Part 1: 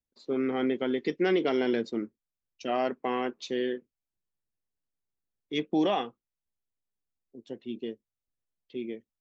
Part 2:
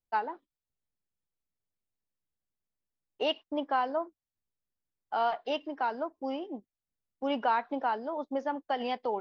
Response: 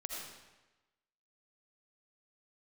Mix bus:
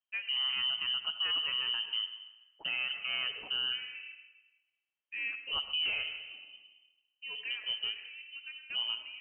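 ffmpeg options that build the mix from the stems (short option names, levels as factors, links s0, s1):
-filter_complex "[0:a]volume=0.944,asplit=3[s0][s1][s2];[s1]volume=0.299[s3];[1:a]volume=0.282,asplit=2[s4][s5];[s5]volume=0.501[s6];[s2]apad=whole_len=406134[s7];[s4][s7]sidechaincompress=threshold=0.00398:ratio=8:attack=16:release=1040[s8];[2:a]atrim=start_sample=2205[s9];[s3][s6]amix=inputs=2:normalize=0[s10];[s10][s9]afir=irnorm=-1:irlink=0[s11];[s0][s8][s11]amix=inputs=3:normalize=0,highpass=88,lowpass=f=2800:t=q:w=0.5098,lowpass=f=2800:t=q:w=0.6013,lowpass=f=2800:t=q:w=0.9,lowpass=f=2800:t=q:w=2.563,afreqshift=-3300,alimiter=level_in=1.19:limit=0.0631:level=0:latency=1:release=95,volume=0.841"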